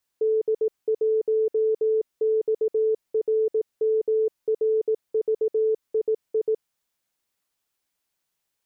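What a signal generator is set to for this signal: Morse "D1XRMRVII" 18 wpm 438 Hz -18.5 dBFS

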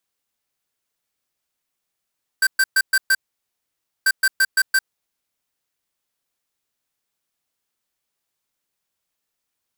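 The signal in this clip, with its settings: beep pattern square 1.56 kHz, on 0.05 s, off 0.12 s, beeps 5, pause 0.91 s, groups 2, -15.5 dBFS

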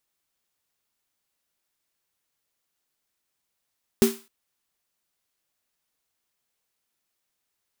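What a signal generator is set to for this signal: snare drum length 0.26 s, tones 230 Hz, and 390 Hz, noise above 780 Hz, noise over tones -10 dB, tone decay 0.25 s, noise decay 0.37 s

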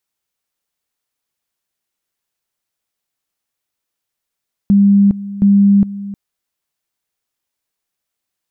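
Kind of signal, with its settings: two-level tone 200 Hz -6 dBFS, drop 16.5 dB, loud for 0.41 s, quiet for 0.31 s, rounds 2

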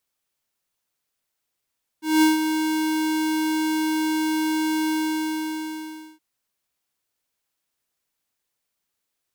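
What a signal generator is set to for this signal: ADSR square 313 Hz, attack 201 ms, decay 152 ms, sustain -8 dB, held 2.88 s, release 1290 ms -15 dBFS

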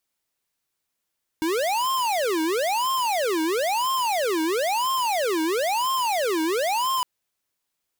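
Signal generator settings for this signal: siren wail 315–1060 Hz 1 per s square -23.5 dBFS 5.61 s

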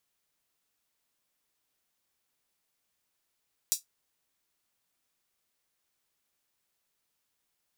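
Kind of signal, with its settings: closed hi-hat, high-pass 5.6 kHz, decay 0.14 s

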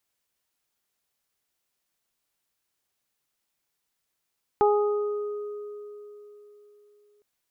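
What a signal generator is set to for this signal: additive tone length 2.61 s, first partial 415 Hz, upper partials -0.5/-11 dB, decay 3.69 s, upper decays 0.86/2.63 s, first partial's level -18 dB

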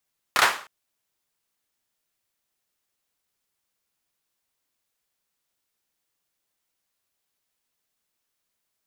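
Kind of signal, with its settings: hand clap length 0.31 s, bursts 3, apart 29 ms, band 1.2 kHz, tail 0.40 s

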